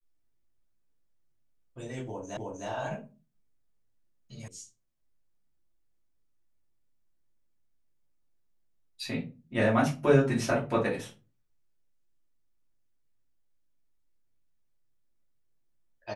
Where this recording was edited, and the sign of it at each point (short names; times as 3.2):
2.37 repeat of the last 0.31 s
4.48 sound cut off